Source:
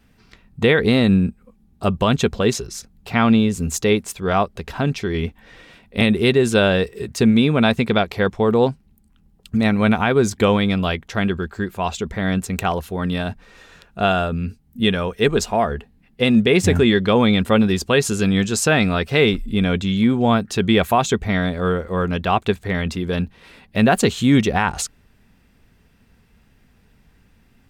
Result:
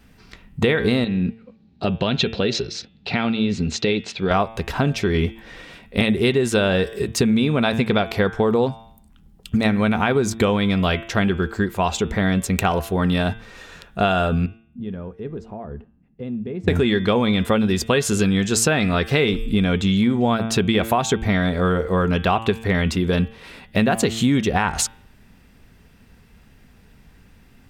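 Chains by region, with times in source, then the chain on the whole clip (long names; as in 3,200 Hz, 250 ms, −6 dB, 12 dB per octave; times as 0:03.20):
0:01.04–0:04.31: downward compressor, threshold −19 dBFS + loudspeaker in its box 110–5,000 Hz, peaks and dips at 1,100 Hz −8 dB, 2,600 Hz +4 dB, 4,100 Hz +8 dB
0:14.46–0:16.68: downward compressor 2.5 to 1, threshold −28 dBFS + resonant band-pass 110 Hz, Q 0.61 + low-shelf EQ 160 Hz −8 dB
whole clip: hum removal 112.6 Hz, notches 33; downward compressor, threshold −20 dBFS; level +5 dB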